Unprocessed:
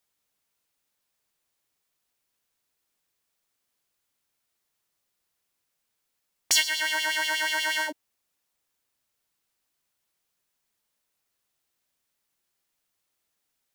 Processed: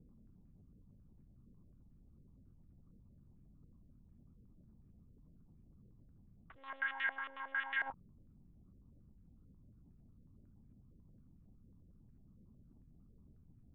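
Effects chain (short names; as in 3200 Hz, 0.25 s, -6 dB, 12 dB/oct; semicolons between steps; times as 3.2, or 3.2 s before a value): Wiener smoothing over 25 samples; elliptic band-stop 200–750 Hz; resonant low shelf 670 Hz -9.5 dB, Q 1.5; negative-ratio compressor -33 dBFS, ratio -1; hum 60 Hz, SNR 12 dB; monotone LPC vocoder at 8 kHz 270 Hz; stepped low-pass 11 Hz 500–1800 Hz; gain -8.5 dB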